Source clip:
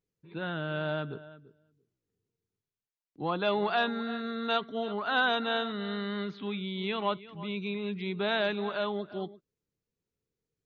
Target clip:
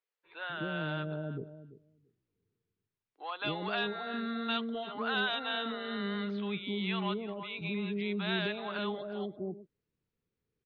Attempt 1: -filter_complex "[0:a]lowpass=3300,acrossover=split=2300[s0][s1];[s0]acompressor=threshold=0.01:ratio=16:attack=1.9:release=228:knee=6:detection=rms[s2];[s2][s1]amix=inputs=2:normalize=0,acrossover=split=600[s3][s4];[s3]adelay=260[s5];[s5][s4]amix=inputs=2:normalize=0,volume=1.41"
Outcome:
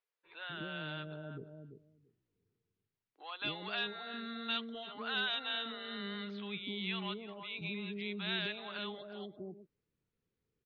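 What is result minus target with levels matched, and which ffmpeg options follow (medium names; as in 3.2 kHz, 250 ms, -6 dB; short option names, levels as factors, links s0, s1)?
compression: peak gain reduction +9 dB
-filter_complex "[0:a]lowpass=3300,acrossover=split=2300[s0][s1];[s0]acompressor=threshold=0.0299:ratio=16:attack=1.9:release=228:knee=6:detection=rms[s2];[s2][s1]amix=inputs=2:normalize=0,acrossover=split=600[s3][s4];[s3]adelay=260[s5];[s5][s4]amix=inputs=2:normalize=0,volume=1.41"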